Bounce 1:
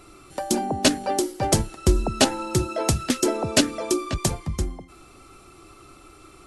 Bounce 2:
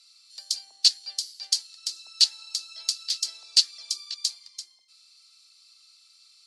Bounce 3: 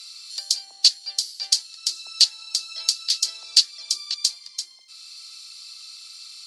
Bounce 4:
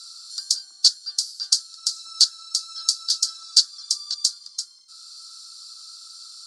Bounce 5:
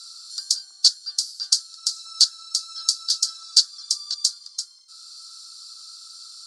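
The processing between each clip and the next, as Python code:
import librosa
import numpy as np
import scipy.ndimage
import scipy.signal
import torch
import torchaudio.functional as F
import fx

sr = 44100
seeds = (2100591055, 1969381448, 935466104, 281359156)

y1 = fx.ladder_bandpass(x, sr, hz=4800.0, resonance_pct=75)
y1 = y1 * 10.0 ** (8.5 / 20.0)
y2 = fx.band_squash(y1, sr, depth_pct=40)
y2 = y2 * 10.0 ** (5.5 / 20.0)
y3 = fx.curve_eq(y2, sr, hz=(150.0, 350.0, 500.0, 840.0, 1400.0, 2300.0, 3400.0, 4800.0, 9000.0, 13000.0), db=(0, -3, -20, -18, 11, -25, -5, 3, 4, -5))
y3 = y3 * 10.0 ** (-2.0 / 20.0)
y4 = scipy.signal.sosfilt(scipy.signal.butter(2, 350.0, 'highpass', fs=sr, output='sos'), y3)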